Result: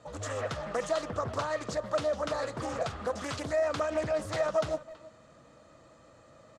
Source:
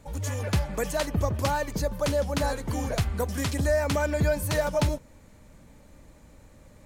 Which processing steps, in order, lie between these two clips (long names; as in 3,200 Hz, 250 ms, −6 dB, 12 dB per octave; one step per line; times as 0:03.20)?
brickwall limiter −22.5 dBFS, peak gain reduction 8.5 dB
loudspeaker in its box 160–6,800 Hz, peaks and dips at 170 Hz −9 dB, 1,200 Hz +6 dB, 5,200 Hz −4 dB
comb filter 1.7 ms, depth 41%
far-end echo of a speakerphone 340 ms, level −17 dB
wrong playback speed 24 fps film run at 25 fps
parametric band 2,300 Hz −8 dB 0.35 octaves
convolution reverb, pre-delay 6 ms, DRR 13.5 dB
highs frequency-modulated by the lows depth 0.48 ms